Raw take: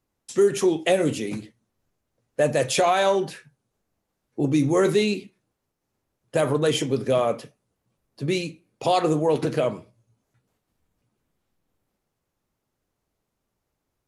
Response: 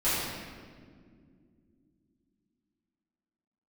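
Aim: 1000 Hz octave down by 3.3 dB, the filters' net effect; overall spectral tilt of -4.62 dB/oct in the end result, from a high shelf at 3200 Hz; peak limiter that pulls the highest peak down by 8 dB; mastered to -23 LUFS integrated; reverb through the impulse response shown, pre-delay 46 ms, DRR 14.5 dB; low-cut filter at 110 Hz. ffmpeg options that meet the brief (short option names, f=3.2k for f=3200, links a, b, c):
-filter_complex "[0:a]highpass=110,equalizer=f=1k:t=o:g=-5.5,highshelf=f=3.2k:g=3.5,alimiter=limit=-16dB:level=0:latency=1,asplit=2[a][b];[1:a]atrim=start_sample=2205,adelay=46[c];[b][c]afir=irnorm=-1:irlink=0,volume=-26.5dB[d];[a][d]amix=inputs=2:normalize=0,volume=3.5dB"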